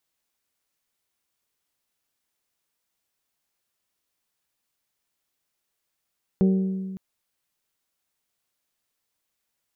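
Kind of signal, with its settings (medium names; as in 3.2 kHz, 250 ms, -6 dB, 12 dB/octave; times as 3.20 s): glass hit bell, length 0.56 s, lowest mode 190 Hz, decay 1.85 s, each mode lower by 7.5 dB, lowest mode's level -15 dB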